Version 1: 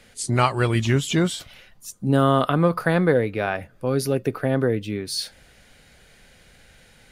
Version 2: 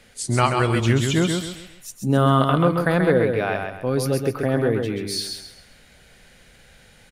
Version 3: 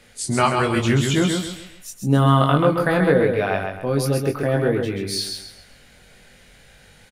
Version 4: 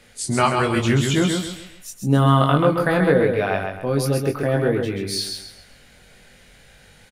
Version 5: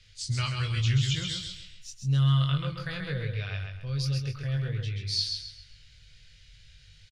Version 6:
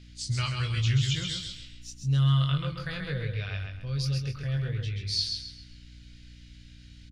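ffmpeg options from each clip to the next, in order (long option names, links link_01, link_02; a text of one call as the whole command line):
ffmpeg -i in.wav -af "aecho=1:1:133|266|399|532:0.562|0.191|0.065|0.0221" out.wav
ffmpeg -i in.wav -filter_complex "[0:a]asplit=2[link_01][link_02];[link_02]adelay=21,volume=-4.5dB[link_03];[link_01][link_03]amix=inputs=2:normalize=0" out.wav
ffmpeg -i in.wav -af anull out.wav
ffmpeg -i in.wav -af "firequalizer=gain_entry='entry(120,0);entry(190,-21);entry(290,-30);entry(490,-22);entry(750,-30);entry(1200,-18);entry(2900,-4);entry(5000,-1);entry(11000,-26)':delay=0.05:min_phase=1" out.wav
ffmpeg -i in.wav -af "aeval=exprs='val(0)+0.00355*(sin(2*PI*60*n/s)+sin(2*PI*2*60*n/s)/2+sin(2*PI*3*60*n/s)/3+sin(2*PI*4*60*n/s)/4+sin(2*PI*5*60*n/s)/5)':channel_layout=same" out.wav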